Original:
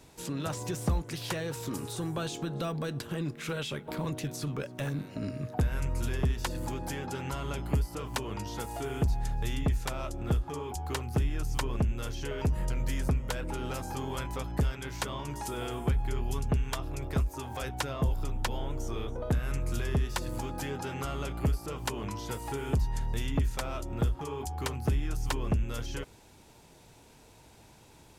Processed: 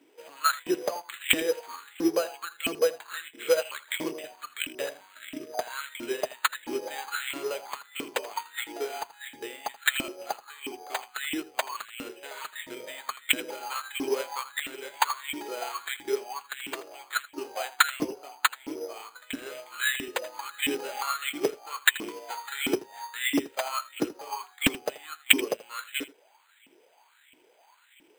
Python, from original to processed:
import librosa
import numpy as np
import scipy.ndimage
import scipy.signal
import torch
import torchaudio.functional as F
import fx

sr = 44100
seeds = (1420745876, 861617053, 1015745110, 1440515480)

p1 = fx.weighting(x, sr, curve='D')
p2 = fx.filter_lfo_highpass(p1, sr, shape='saw_up', hz=1.5, low_hz=270.0, high_hz=2500.0, q=7.7)
p3 = p2 + fx.echo_single(p2, sr, ms=81, db=-13.0, dry=0)
p4 = np.repeat(scipy.signal.resample_poly(p3, 1, 8), 8)[:len(p3)]
p5 = fx.upward_expand(p4, sr, threshold_db=-44.0, expansion=1.5)
y = p5 * 10.0 ** (3.0 / 20.0)